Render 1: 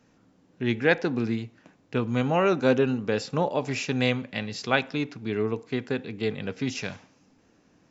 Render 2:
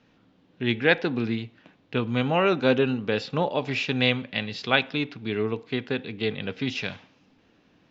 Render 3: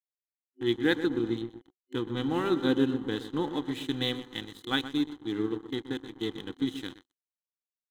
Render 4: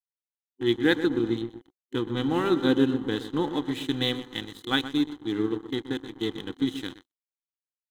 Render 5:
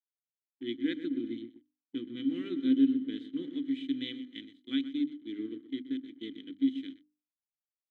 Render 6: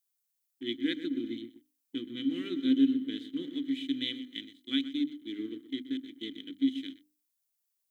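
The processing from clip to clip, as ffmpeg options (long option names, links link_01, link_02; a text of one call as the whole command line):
ffmpeg -i in.wav -af "lowpass=frequency=3500:width_type=q:width=2.2" out.wav
ffmpeg -i in.wav -filter_complex "[0:a]asplit=2[link_01][link_02];[link_02]adelay=124,lowpass=frequency=1500:poles=1,volume=-9dB,asplit=2[link_03][link_04];[link_04]adelay=124,lowpass=frequency=1500:poles=1,volume=0.55,asplit=2[link_05][link_06];[link_06]adelay=124,lowpass=frequency=1500:poles=1,volume=0.55,asplit=2[link_07][link_08];[link_08]adelay=124,lowpass=frequency=1500:poles=1,volume=0.55,asplit=2[link_09][link_10];[link_10]adelay=124,lowpass=frequency=1500:poles=1,volume=0.55,asplit=2[link_11][link_12];[link_12]adelay=124,lowpass=frequency=1500:poles=1,volume=0.55[link_13];[link_03][link_05][link_07][link_09][link_11][link_13]amix=inputs=6:normalize=0[link_14];[link_01][link_14]amix=inputs=2:normalize=0,aeval=exprs='sgn(val(0))*max(abs(val(0))-0.0188,0)':channel_layout=same,superequalizer=6b=3.98:8b=0.282:12b=0.316:13b=1.58:14b=0.355,volume=-7dB" out.wav
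ffmpeg -i in.wav -af "agate=range=-33dB:threshold=-50dB:ratio=3:detection=peak,volume=3.5dB" out.wav
ffmpeg -i in.wav -filter_complex "[0:a]asplit=3[link_01][link_02][link_03];[link_01]bandpass=frequency=270:width_type=q:width=8,volume=0dB[link_04];[link_02]bandpass=frequency=2290:width_type=q:width=8,volume=-6dB[link_05];[link_03]bandpass=frequency=3010:width_type=q:width=8,volume=-9dB[link_06];[link_04][link_05][link_06]amix=inputs=3:normalize=0,agate=range=-33dB:threshold=-45dB:ratio=3:detection=peak,bandreject=frequency=50:width_type=h:width=6,bandreject=frequency=100:width_type=h:width=6,bandreject=frequency=150:width_type=h:width=6,bandreject=frequency=200:width_type=h:width=6,bandreject=frequency=250:width_type=h:width=6,bandreject=frequency=300:width_type=h:width=6" out.wav
ffmpeg -i in.wav -af "crystalizer=i=3.5:c=0" out.wav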